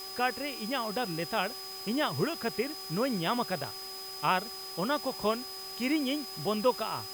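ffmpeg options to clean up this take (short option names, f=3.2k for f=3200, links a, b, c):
-af "bandreject=f=383.2:t=h:w=4,bandreject=f=766.4:t=h:w=4,bandreject=f=1.1496k:t=h:w=4,bandreject=f=5k:w=30,afwtdn=0.0045"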